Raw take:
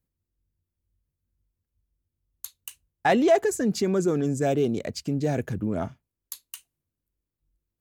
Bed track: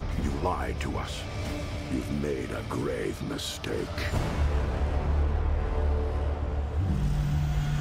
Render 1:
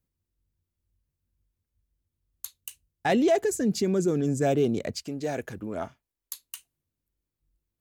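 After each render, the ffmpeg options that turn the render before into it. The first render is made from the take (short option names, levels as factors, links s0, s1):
-filter_complex "[0:a]asettb=1/sr,asplit=3[s0][s1][s2];[s0]atrim=end=2.594[s3];[s1]atrim=start=2.59:end=4.28,asetpts=PTS-STARTPTS,afade=t=in:d=0.004:c=qsin,afade=t=out:st=1.686:d=0.004:c=qsin,equalizer=f=1100:t=o:w=1.7:g=-6.5[s4];[s2]atrim=start=4.276[s5];[s3][s4]acrossfade=d=0.004:c1=hsin:c2=qsin[s6];[s6][s5]acrossfade=d=0.004:c1=qsin:c2=hsin,asettb=1/sr,asplit=3[s7][s8][s9];[s7]atrim=end=4.964[s10];[s8]atrim=start=4.96:end=6.4,asetpts=PTS-STARTPTS,afade=t=in:d=0.004:c=qsin,afade=t=out:st=1.436:d=0.004:c=qsin,equalizer=f=130:w=0.54:g=-12[s11];[s9]atrim=start=6.396[s12];[s10][s11]acrossfade=d=0.004:c1=hsin:c2=qsin[s13];[s13][s12]acrossfade=d=0.004:c1=qsin:c2=hsin"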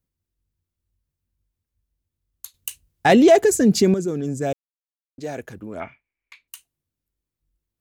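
-filter_complex "[0:a]asettb=1/sr,asplit=3[s0][s1][s2];[s0]atrim=end=5.804[s3];[s1]atrim=start=5.8:end=6.48,asetpts=PTS-STARTPTS,afade=t=in:d=0.004:c=qsin,afade=t=out:st=0.676:d=0.004:c=qsin,lowpass=f=2300:t=q:w=14[s4];[s2]atrim=start=6.476[s5];[s3][s4]acrossfade=d=0.004:c1=hsin:c2=qsin[s6];[s6][s5]acrossfade=d=0.004:c1=qsin:c2=hsin,asplit=5[s7][s8][s9][s10][s11];[s7]atrim=end=2.542[s12];[s8]atrim=start=2.538:end=3.942,asetpts=PTS-STARTPTS,volume=2.99[s13];[s9]atrim=start=3.938:end=4.53,asetpts=PTS-STARTPTS,afade=t=out:st=0.588:d=0.004:c=hsin[s14];[s10]atrim=start=4.53:end=5.18,asetpts=PTS-STARTPTS,volume=0[s15];[s11]atrim=start=5.18,asetpts=PTS-STARTPTS,afade=t=in:d=0.004:c=hsin[s16];[s12][s13]acrossfade=d=0.004:c1=hsin:c2=hsin[s17];[s14][s15][s16]concat=n=3:v=0:a=1[s18];[s17][s18]acrossfade=d=0.004:c1=hsin:c2=hsin"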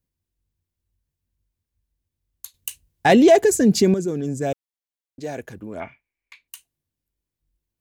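-af "bandreject=f=1300:w=10"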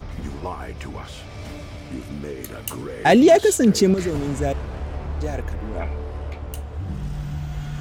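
-filter_complex "[1:a]volume=0.794[s0];[0:a][s0]amix=inputs=2:normalize=0"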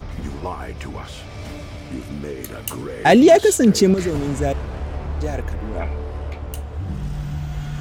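-af "volume=1.26"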